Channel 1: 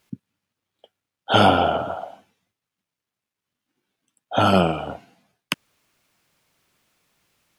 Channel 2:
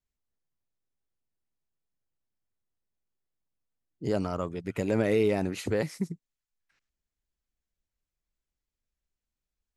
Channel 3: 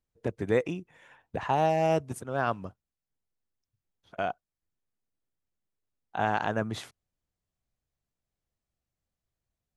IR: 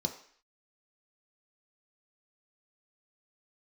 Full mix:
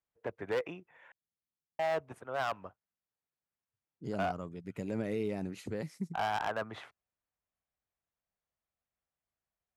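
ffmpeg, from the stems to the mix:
-filter_complex "[1:a]equalizer=f=180:t=o:w=1.3:g=6,volume=0.251[s0];[2:a]acrossover=split=510 2700:gain=0.2 1 0.0891[s1][s2][s3];[s1][s2][s3]amix=inputs=3:normalize=0,volume=23.7,asoftclip=hard,volume=0.0422,volume=1,asplit=3[s4][s5][s6];[s4]atrim=end=1.12,asetpts=PTS-STARTPTS,afade=t=out:st=1.116:d=0.004:c=hsin[s7];[s5]atrim=start=1.12:end=1.79,asetpts=PTS-STARTPTS,volume=0[s8];[s6]atrim=start=1.79,asetpts=PTS-STARTPTS,afade=t=in:d=0.004:c=hsin[s9];[s7][s8][s9]concat=n=3:v=0:a=1[s10];[s0][s10]amix=inputs=2:normalize=0,highpass=47"

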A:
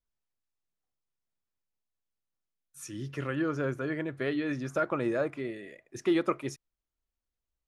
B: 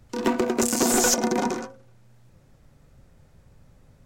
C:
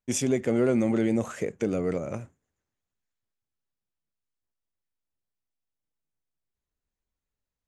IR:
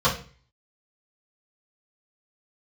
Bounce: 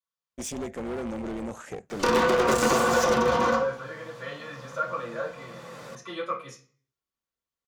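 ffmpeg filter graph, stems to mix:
-filter_complex "[0:a]highpass=f=1200:p=1,volume=0.266,asplit=3[s0][s1][s2];[s1]volume=0.708[s3];[1:a]acrossover=split=2600[s4][s5];[s5]acompressor=threshold=0.0251:ratio=4:attack=1:release=60[s6];[s4][s6]amix=inputs=2:normalize=0,highpass=220,asplit=2[s7][s8];[s8]highpass=f=720:p=1,volume=31.6,asoftclip=type=tanh:threshold=0.316[s9];[s7][s9]amix=inputs=2:normalize=0,lowpass=f=4600:p=1,volume=0.501,adelay=1900,volume=0.841,asplit=2[s10][s11];[s11]volume=0.126[s12];[2:a]highpass=f=150:p=1,tremolo=f=300:d=0.857,volume=25.1,asoftclip=hard,volume=0.0398,adelay=300,volume=0.944[s13];[s2]apad=whole_len=262397[s14];[s10][s14]sidechaincompress=threshold=0.00126:ratio=8:attack=9.4:release=477[s15];[3:a]atrim=start_sample=2205[s16];[s3][s12]amix=inputs=2:normalize=0[s17];[s17][s16]afir=irnorm=-1:irlink=0[s18];[s0][s15][s13][s18]amix=inputs=4:normalize=0,acompressor=threshold=0.1:ratio=3"

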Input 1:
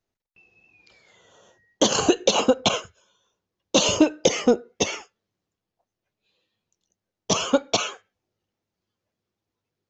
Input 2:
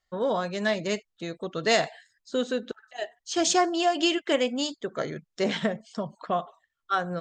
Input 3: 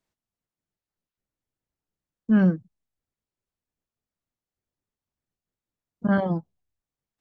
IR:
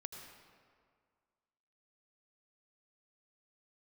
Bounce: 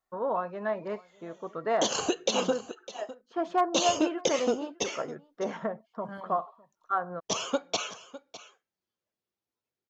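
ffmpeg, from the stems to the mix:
-filter_complex "[0:a]volume=0.422,asplit=3[s0][s1][s2];[s0]atrim=end=2.61,asetpts=PTS-STARTPTS,afade=t=out:st=2.606:d=0.004:c=hsin[s3];[s1]atrim=start=2.61:end=3.57,asetpts=PTS-STARTPTS,volume=0[s4];[s2]atrim=start=3.57,asetpts=PTS-STARTPTS,afade=t=in:d=0.004:c=hsin[s5];[s3][s4][s5]concat=n=3:v=0:a=1,asplit=2[s6][s7];[s7]volume=0.158[s8];[1:a]lowpass=f=1100:t=q:w=2.2,asoftclip=type=hard:threshold=0.299,volume=0.562,asplit=2[s9][s10];[s10]volume=0.0631[s11];[2:a]crystalizer=i=3:c=0,volume=0.126[s12];[s8][s11]amix=inputs=2:normalize=0,aecho=0:1:605:1[s13];[s6][s9][s12][s13]amix=inputs=4:normalize=0,lowshelf=f=190:g=-10"

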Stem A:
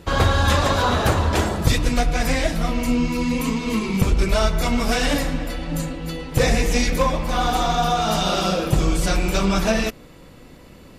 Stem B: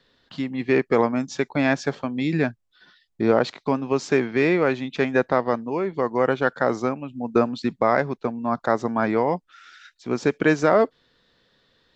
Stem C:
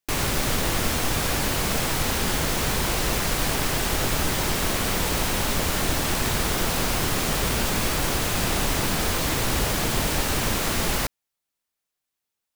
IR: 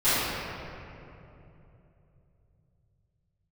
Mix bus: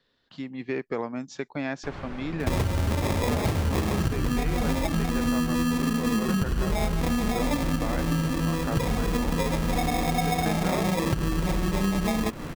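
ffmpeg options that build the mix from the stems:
-filter_complex "[0:a]equalizer=f=160:w=0.32:g=11.5,acompressor=threshold=0.178:ratio=6,acrusher=samples=30:mix=1:aa=0.000001,adelay=2400,volume=1.19[s0];[1:a]volume=0.398[s1];[2:a]lowpass=1900,adelay=1750,volume=0.251[s2];[s0][s1][s2]amix=inputs=3:normalize=0,acompressor=threshold=0.0501:ratio=2.5"

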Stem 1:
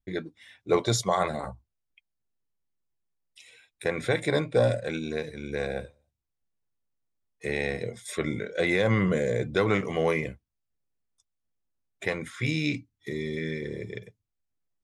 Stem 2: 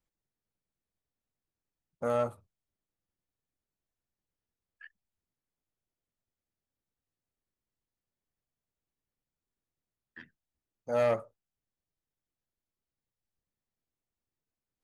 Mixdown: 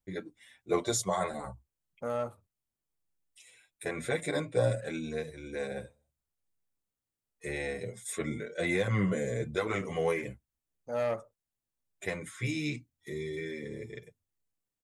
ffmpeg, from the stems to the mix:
-filter_complex "[0:a]highshelf=f=6200:t=q:w=1.5:g=6,asplit=2[s0][s1];[s1]adelay=7.8,afreqshift=0.9[s2];[s0][s2]amix=inputs=2:normalize=1,volume=0.75[s3];[1:a]volume=0.631[s4];[s3][s4]amix=inputs=2:normalize=0"

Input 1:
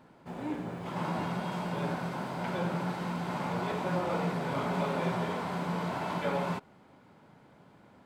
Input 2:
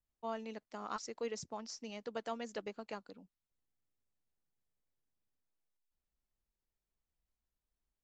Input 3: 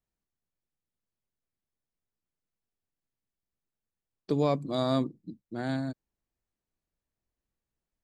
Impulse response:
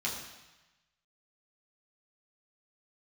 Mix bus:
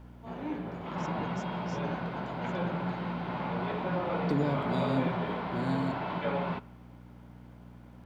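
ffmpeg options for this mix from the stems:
-filter_complex "[0:a]lowpass=f=3700:w=0.5412,lowpass=f=3700:w=1.3066,volume=0.944,asplit=2[s0][s1];[s1]volume=0.0708[s2];[1:a]volume=0.891[s3];[2:a]acrossover=split=350[s4][s5];[s5]acompressor=threshold=0.0141:ratio=6[s6];[s4][s6]amix=inputs=2:normalize=0,aeval=exprs='val(0)+0.00398*(sin(2*PI*60*n/s)+sin(2*PI*2*60*n/s)/2+sin(2*PI*3*60*n/s)/3+sin(2*PI*4*60*n/s)/4+sin(2*PI*5*60*n/s)/5)':c=same,acrusher=bits=11:mix=0:aa=0.000001,volume=0.891,asplit=3[s7][s8][s9];[s8]volume=0.158[s10];[s9]apad=whole_len=354462[s11];[s3][s11]sidechaincompress=threshold=0.002:ratio=8:attack=16:release=390[s12];[3:a]atrim=start_sample=2205[s13];[s2][s10]amix=inputs=2:normalize=0[s14];[s14][s13]afir=irnorm=-1:irlink=0[s15];[s0][s12][s7][s15]amix=inputs=4:normalize=0"

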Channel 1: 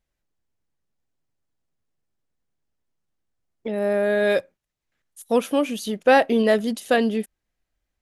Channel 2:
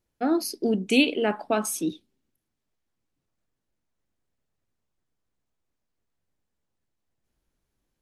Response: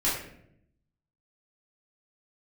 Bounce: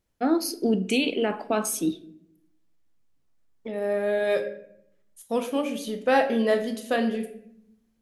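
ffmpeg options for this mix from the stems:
-filter_complex "[0:a]volume=0.422,asplit=2[s0][s1];[s1]volume=0.224[s2];[1:a]alimiter=limit=0.168:level=0:latency=1:release=51,volume=1.06,asplit=2[s3][s4];[s4]volume=0.0891[s5];[2:a]atrim=start_sample=2205[s6];[s2][s5]amix=inputs=2:normalize=0[s7];[s7][s6]afir=irnorm=-1:irlink=0[s8];[s0][s3][s8]amix=inputs=3:normalize=0"

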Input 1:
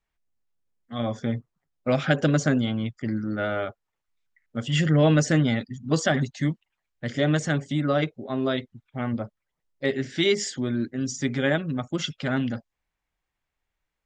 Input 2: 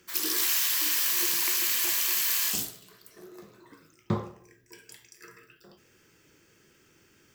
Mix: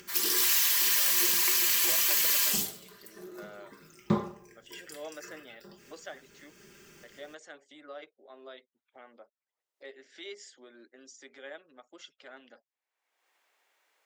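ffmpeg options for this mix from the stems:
-filter_complex "[0:a]highpass=f=400:w=0.5412,highpass=f=400:w=1.3066,volume=0.106[s0];[1:a]aecho=1:1:5:0.68,volume=0.944[s1];[s0][s1]amix=inputs=2:normalize=0,acompressor=mode=upward:threshold=0.00447:ratio=2.5"

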